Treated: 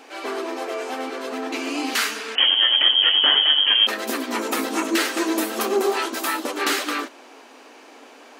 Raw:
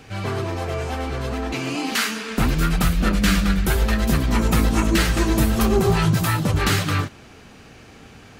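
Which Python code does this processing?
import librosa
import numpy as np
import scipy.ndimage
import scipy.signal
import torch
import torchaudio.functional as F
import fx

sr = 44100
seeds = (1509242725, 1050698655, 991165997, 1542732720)

y = fx.freq_invert(x, sr, carrier_hz=3200, at=(2.35, 3.87))
y = fx.brickwall_highpass(y, sr, low_hz=240.0)
y = fx.dmg_noise_band(y, sr, seeds[0], low_hz=470.0, high_hz=1100.0, level_db=-52.0)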